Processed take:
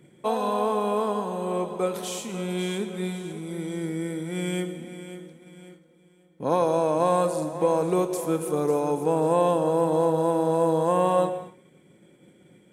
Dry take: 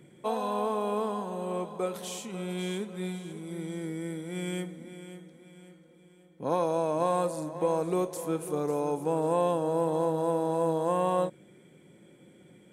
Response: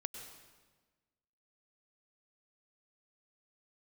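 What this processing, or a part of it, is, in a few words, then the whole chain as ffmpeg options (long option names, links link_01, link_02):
keyed gated reverb: -filter_complex "[0:a]asplit=3[link_01][link_02][link_03];[1:a]atrim=start_sample=2205[link_04];[link_02][link_04]afir=irnorm=-1:irlink=0[link_05];[link_03]apad=whole_len=560988[link_06];[link_05][link_06]sidechaingate=range=-33dB:threshold=-52dB:ratio=16:detection=peak,volume=2.5dB[link_07];[link_01][link_07]amix=inputs=2:normalize=0,volume=-1dB"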